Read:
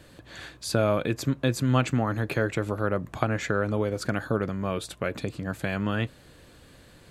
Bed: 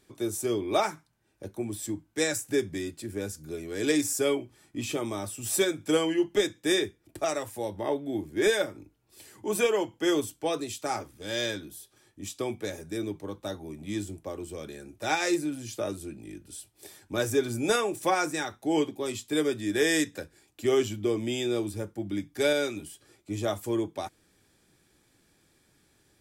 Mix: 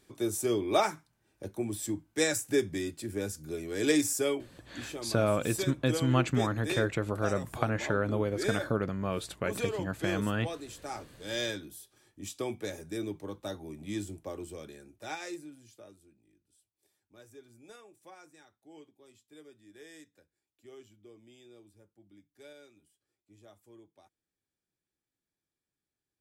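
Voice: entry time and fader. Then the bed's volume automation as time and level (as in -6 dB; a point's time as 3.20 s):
4.40 s, -3.5 dB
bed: 4.05 s -0.5 dB
4.68 s -9.5 dB
10.86 s -9.5 dB
11.33 s -3 dB
14.42 s -3 dB
16.35 s -27 dB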